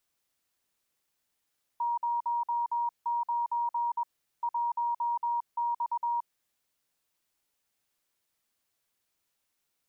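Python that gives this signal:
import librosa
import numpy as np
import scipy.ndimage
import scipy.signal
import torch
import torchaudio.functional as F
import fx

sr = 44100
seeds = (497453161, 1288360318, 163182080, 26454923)

y = fx.morse(sr, text='09 1X', wpm=21, hz=947.0, level_db=-26.5)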